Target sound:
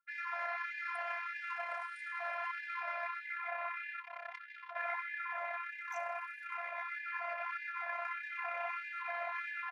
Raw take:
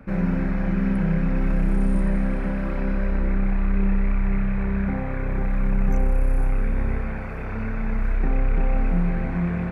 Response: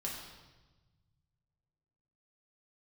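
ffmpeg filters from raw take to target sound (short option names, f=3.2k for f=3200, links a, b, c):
-filter_complex "[0:a]asplit=2[a][b];[b]adelay=13,volume=-6dB[c];[a][c]amix=inputs=2:normalize=0,asplit=2[d][e];[1:a]atrim=start_sample=2205,adelay=60[f];[e][f]afir=irnorm=-1:irlink=0,volume=-13.5dB[g];[d][g]amix=inputs=2:normalize=0,asplit=3[h][i][j];[h]afade=t=out:st=4:d=0.02[k];[i]volume=30.5dB,asoftclip=hard,volume=-30.5dB,afade=t=in:st=4:d=0.02,afade=t=out:st=4.75:d=0.02[l];[j]afade=t=in:st=4.75:d=0.02[m];[k][l][m]amix=inputs=3:normalize=0,anlmdn=2.51,flanger=delay=0.9:depth=9.1:regen=53:speed=1.2:shape=sinusoidal,asplit=2[n][o];[o]adelay=310,highpass=300,lowpass=3.4k,asoftclip=type=hard:threshold=-23.5dB,volume=-29dB[p];[n][p]amix=inputs=2:normalize=0,acrossover=split=110|720[q][r][s];[r]acompressor=threshold=-39dB:ratio=10[t];[q][t][s]amix=inputs=3:normalize=0,afftfilt=real='hypot(re,im)*cos(PI*b)':imag='0':win_size=512:overlap=0.75,afftfilt=real='re*gte(b*sr/1024,490*pow(1500/490,0.5+0.5*sin(2*PI*1.6*pts/sr)))':imag='im*gte(b*sr/1024,490*pow(1500/490,0.5+0.5*sin(2*PI*1.6*pts/sr)))':win_size=1024:overlap=0.75,volume=8dB"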